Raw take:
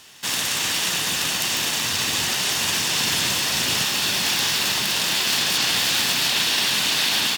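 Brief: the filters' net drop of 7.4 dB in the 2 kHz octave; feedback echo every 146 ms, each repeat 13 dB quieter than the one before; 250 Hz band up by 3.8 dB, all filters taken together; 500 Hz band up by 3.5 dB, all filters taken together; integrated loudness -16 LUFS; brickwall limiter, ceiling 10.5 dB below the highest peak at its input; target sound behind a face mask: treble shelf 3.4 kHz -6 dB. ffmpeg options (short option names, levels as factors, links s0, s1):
-af "equalizer=f=250:t=o:g=4,equalizer=f=500:t=o:g=4,equalizer=f=2000:t=o:g=-8,alimiter=limit=0.2:level=0:latency=1,highshelf=f=3400:g=-6,aecho=1:1:146|292|438:0.224|0.0493|0.0108,volume=3.16"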